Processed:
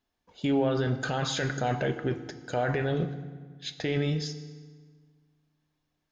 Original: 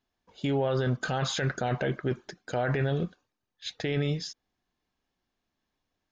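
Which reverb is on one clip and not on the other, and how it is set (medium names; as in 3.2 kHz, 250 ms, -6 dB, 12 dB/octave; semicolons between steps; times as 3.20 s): FDN reverb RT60 1.6 s, low-frequency decay 1.25×, high-frequency decay 0.75×, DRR 9 dB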